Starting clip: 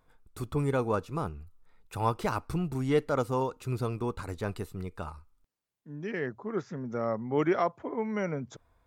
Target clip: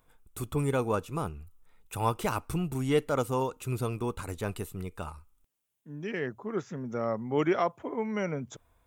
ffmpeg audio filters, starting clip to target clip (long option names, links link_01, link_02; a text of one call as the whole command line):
ffmpeg -i in.wav -af "aexciter=amount=1.4:drive=5.3:freq=2500" out.wav